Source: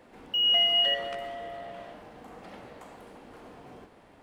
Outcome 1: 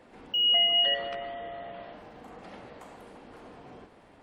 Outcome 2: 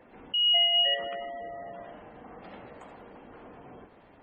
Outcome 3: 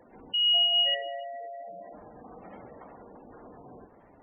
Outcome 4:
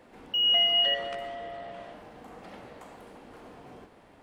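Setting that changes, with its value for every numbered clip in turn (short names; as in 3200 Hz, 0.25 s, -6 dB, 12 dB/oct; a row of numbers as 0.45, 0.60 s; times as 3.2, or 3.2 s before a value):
spectral gate, under each frame's peak: -40, -25, -15, -55 dB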